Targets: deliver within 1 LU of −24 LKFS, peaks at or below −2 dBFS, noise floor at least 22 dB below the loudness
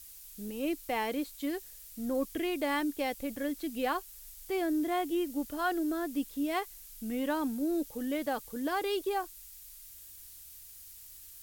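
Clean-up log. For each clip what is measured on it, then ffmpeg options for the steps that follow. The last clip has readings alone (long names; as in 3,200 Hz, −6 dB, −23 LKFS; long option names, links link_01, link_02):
background noise floor −51 dBFS; target noise floor −56 dBFS; integrated loudness −33.5 LKFS; sample peak −19.5 dBFS; target loudness −24.0 LKFS
→ -af "afftdn=noise_reduction=6:noise_floor=-51"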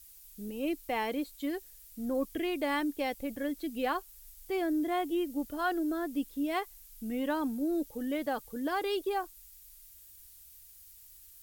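background noise floor −55 dBFS; target noise floor −56 dBFS
→ -af "afftdn=noise_reduction=6:noise_floor=-55"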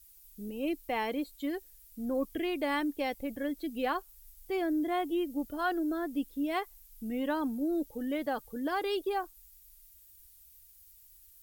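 background noise floor −58 dBFS; integrated loudness −34.0 LKFS; sample peak −19.5 dBFS; target loudness −24.0 LKFS
→ -af "volume=10dB"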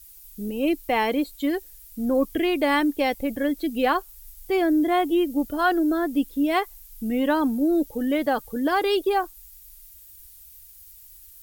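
integrated loudness −24.0 LKFS; sample peak −9.5 dBFS; background noise floor −48 dBFS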